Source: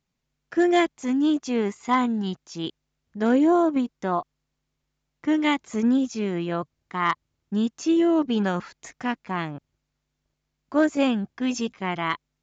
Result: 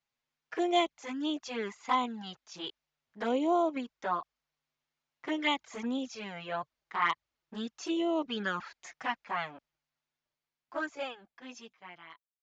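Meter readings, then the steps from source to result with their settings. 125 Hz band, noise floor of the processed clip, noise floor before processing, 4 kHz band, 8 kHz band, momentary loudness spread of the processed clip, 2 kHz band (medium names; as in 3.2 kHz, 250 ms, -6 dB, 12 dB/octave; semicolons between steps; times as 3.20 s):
-17.5 dB, under -85 dBFS, -80 dBFS, -3.0 dB, no reading, 18 LU, -6.0 dB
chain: fade out at the end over 3.01 s; touch-sensitive flanger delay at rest 8.5 ms, full sweep at -17.5 dBFS; three-band isolator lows -15 dB, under 540 Hz, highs -12 dB, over 6 kHz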